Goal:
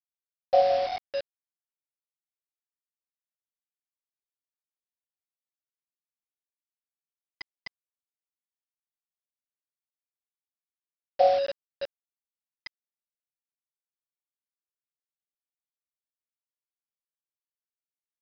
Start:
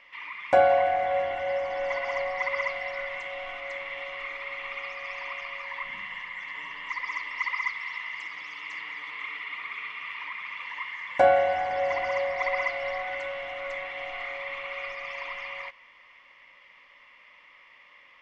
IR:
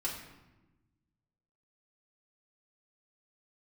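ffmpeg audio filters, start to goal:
-af "afftfilt=real='re*gte(hypot(re,im),0.631)':imag='im*gte(hypot(re,im),0.631)':win_size=1024:overlap=0.75,aresample=11025,acrusher=bits=5:mix=0:aa=0.000001,aresample=44100"

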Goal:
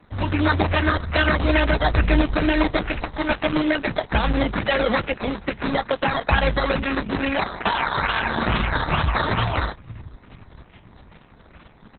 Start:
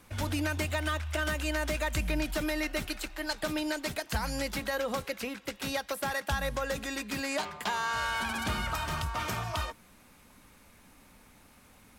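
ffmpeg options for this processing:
ffmpeg -i in.wav -filter_complex "[0:a]acrossover=split=160|4800[link_01][link_02][link_03];[link_01]aecho=1:1:481|962|1443|1924|2405|2886:0.266|0.149|0.0834|0.0467|0.0262|0.0147[link_04];[link_02]acrusher=samples=13:mix=1:aa=0.000001:lfo=1:lforange=7.8:lforate=2.3[link_05];[link_04][link_05][link_03]amix=inputs=3:normalize=0,dynaudnorm=framelen=140:gausssize=5:maxgain=6dB,asplit=2[link_06][link_07];[link_07]adelay=19,volume=-13.5dB[link_08];[link_06][link_08]amix=inputs=2:normalize=0,volume=7dB" -ar 48000 -c:a libopus -b:a 6k out.opus

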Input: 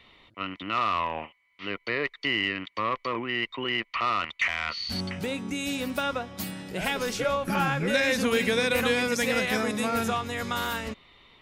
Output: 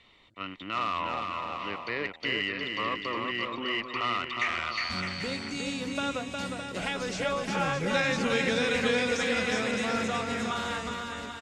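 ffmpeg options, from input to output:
ffmpeg -i in.wav -filter_complex "[0:a]acrossover=split=5800[link_01][link_02];[link_02]acompressor=threshold=-53dB:ratio=4:attack=1:release=60[link_03];[link_01][link_03]amix=inputs=2:normalize=0,lowpass=frequency=7900:width_type=q:width=2.4,aecho=1:1:360|612|788.4|911.9|998.3:0.631|0.398|0.251|0.158|0.1,volume=-4.5dB" out.wav

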